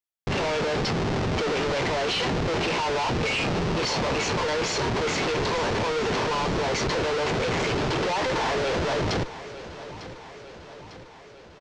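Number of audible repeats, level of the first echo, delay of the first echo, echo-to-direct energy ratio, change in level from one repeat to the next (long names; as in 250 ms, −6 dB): 5, −15.0 dB, 900 ms, −13.0 dB, −4.5 dB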